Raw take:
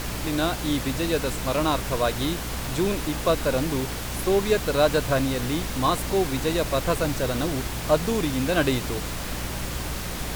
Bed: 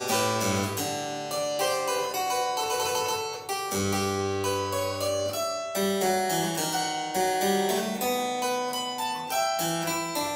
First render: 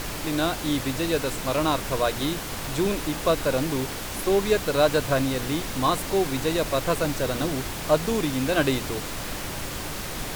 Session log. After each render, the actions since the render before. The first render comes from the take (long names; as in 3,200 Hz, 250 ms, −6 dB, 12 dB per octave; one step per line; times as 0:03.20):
mains-hum notches 60/120/180/240 Hz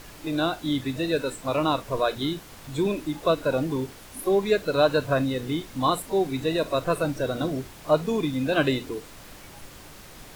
noise reduction from a noise print 13 dB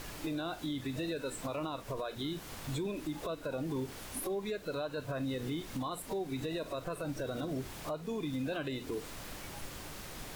downward compressor 10 to 1, threshold −31 dBFS, peak gain reduction 17 dB
brickwall limiter −28.5 dBFS, peak gain reduction 8 dB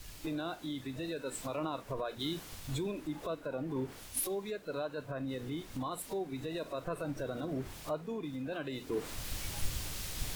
speech leveller within 5 dB 0.5 s
multiband upward and downward expander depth 100%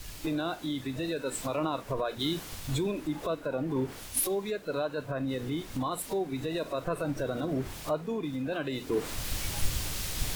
level +6 dB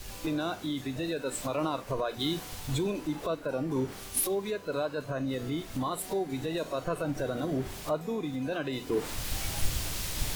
mix in bed −24.5 dB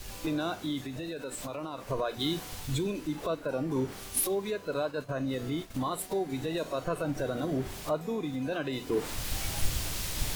0:00.83–0:01.84: downward compressor 3 to 1, threshold −35 dBFS
0:02.65–0:03.18: parametric band 780 Hz −7.5 dB 1.1 octaves
0:04.74–0:06.12: downward expander −38 dBFS